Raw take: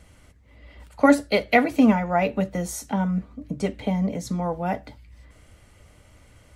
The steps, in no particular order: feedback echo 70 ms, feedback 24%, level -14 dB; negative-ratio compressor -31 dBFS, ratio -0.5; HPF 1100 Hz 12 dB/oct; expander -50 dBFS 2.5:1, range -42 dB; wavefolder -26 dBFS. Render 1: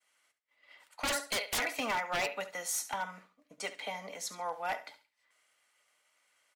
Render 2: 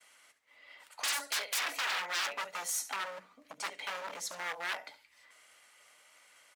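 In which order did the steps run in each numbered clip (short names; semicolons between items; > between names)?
HPF > expander > feedback echo > wavefolder > negative-ratio compressor; expander > feedback echo > wavefolder > HPF > negative-ratio compressor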